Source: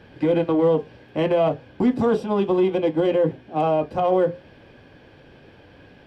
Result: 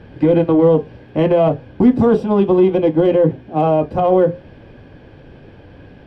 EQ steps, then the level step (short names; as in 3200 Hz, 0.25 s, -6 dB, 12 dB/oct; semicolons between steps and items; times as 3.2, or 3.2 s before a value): tilt -2 dB/oct; +4.0 dB